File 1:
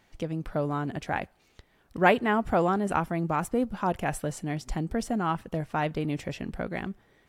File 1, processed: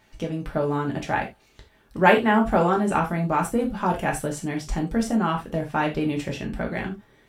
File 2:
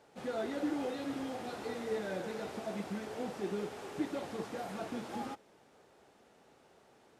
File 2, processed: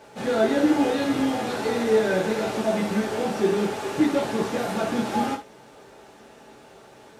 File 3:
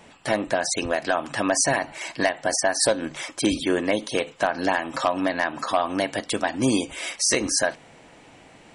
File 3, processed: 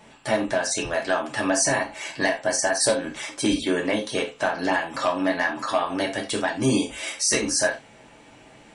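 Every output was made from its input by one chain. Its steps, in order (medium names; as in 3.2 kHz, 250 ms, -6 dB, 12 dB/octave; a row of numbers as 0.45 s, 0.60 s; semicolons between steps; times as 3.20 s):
gated-style reverb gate 110 ms falling, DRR 0 dB; normalise loudness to -24 LUFS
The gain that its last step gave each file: +2.0 dB, +12.0 dB, -3.0 dB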